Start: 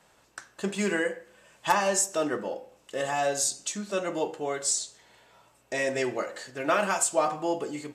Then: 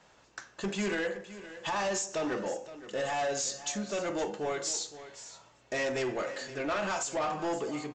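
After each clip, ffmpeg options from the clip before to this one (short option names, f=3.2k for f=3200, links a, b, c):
-af "alimiter=limit=-18dB:level=0:latency=1:release=74,aresample=16000,asoftclip=type=tanh:threshold=-28dB,aresample=44100,aecho=1:1:517:0.188,volume=1dB"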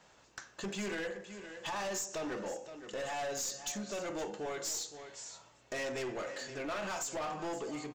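-af "acompressor=threshold=-39dB:ratio=1.5,highshelf=f=7k:g=5.5,aeval=exprs='clip(val(0),-1,0.02)':c=same,volume=-2dB"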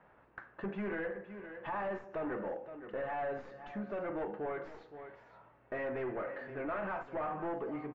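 -af "lowpass=f=1.9k:w=0.5412,lowpass=f=1.9k:w=1.3066,volume=1dB"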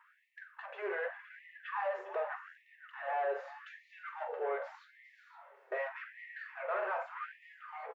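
-filter_complex "[0:a]asplit=2[a][b];[b]aecho=0:1:43|404|462:0.282|0.224|0.119[c];[a][c]amix=inputs=2:normalize=0,afftfilt=real='re*gte(b*sr/1024,350*pow(1800/350,0.5+0.5*sin(2*PI*0.84*pts/sr)))':imag='im*gte(b*sr/1024,350*pow(1800/350,0.5+0.5*sin(2*PI*0.84*pts/sr)))':win_size=1024:overlap=0.75,volume=2.5dB"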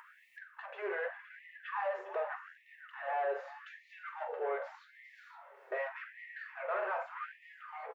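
-af "acompressor=mode=upward:threshold=-50dB:ratio=2.5"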